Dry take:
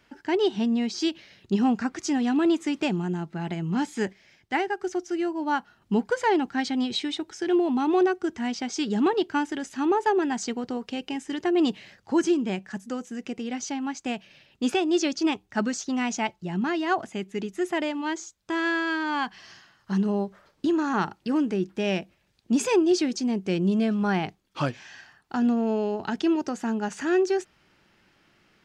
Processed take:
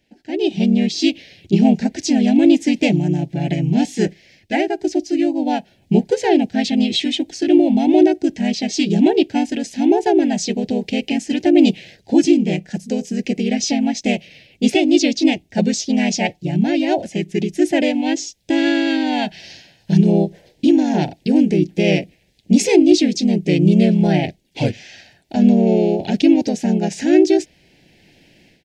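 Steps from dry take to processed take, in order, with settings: AGC gain up to 15.5 dB; harmoniser -3 st -1 dB; Butterworth band-stop 1200 Hz, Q 0.93; gain -4.5 dB

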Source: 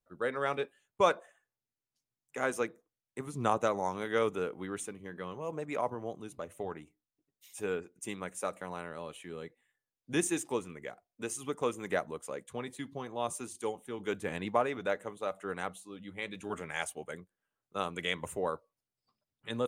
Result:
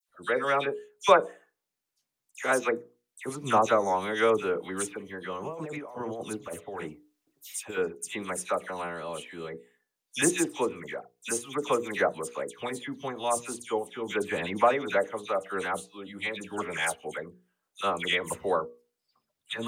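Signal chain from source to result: low shelf 170 Hz -9 dB; notches 60/120/180/240/300/360/420/480 Hz; 5.34–7.69 negative-ratio compressor -44 dBFS, ratio -1; dispersion lows, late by 87 ms, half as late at 2200 Hz; gain +7.5 dB

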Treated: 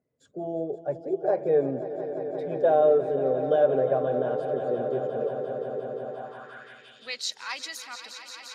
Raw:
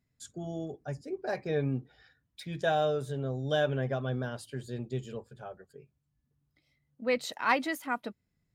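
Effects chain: bin magnitudes rounded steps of 15 dB; dynamic EQ 1100 Hz, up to +3 dB, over -42 dBFS, Q 1.5; in parallel at +1 dB: limiter -26 dBFS, peak gain reduction 13.5 dB; 5.07–5.52 on the sum: dispersion highs, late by 0.135 s, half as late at 380 Hz; on a send: swelling echo 0.175 s, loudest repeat 5, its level -13 dB; on the sum: band-pass sweep 510 Hz -> 5400 Hz, 6.02–7.24; gain +7 dB

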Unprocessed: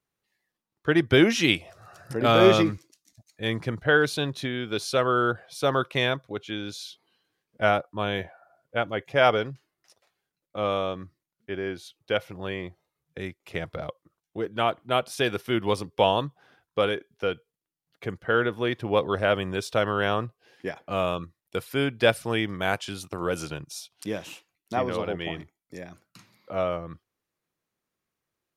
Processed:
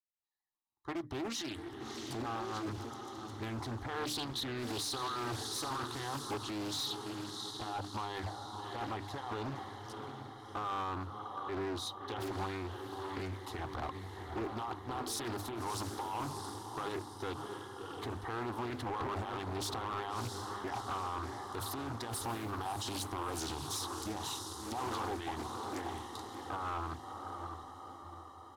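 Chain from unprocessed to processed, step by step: opening faded in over 4.57 s; notches 50/100/150/200/250/300 Hz; comb 1 ms, depth 75%; negative-ratio compressor -32 dBFS, ratio -1; diffused feedback echo 0.652 s, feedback 56%, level -8.5 dB; limiter -23.5 dBFS, peak gain reduction 8.5 dB; fixed phaser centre 650 Hz, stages 6; small resonant body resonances 780/3800 Hz, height 12 dB, ringing for 20 ms; overloaded stage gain 32 dB; Doppler distortion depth 0.55 ms; gain -1 dB

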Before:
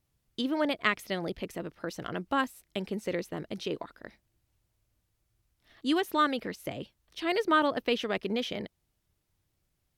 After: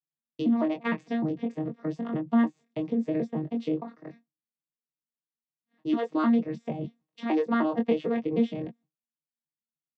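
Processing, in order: arpeggiated vocoder bare fifth, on D#3, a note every 0.152 s; expander -56 dBFS; high shelf 2500 Hz -8.5 dB; notch 1500 Hz, Q 5.1; in parallel at +1.5 dB: compressor, threshold -37 dBFS, peak gain reduction 14.5 dB; on the sum: early reflections 22 ms -4.5 dB, 36 ms -17.5 dB

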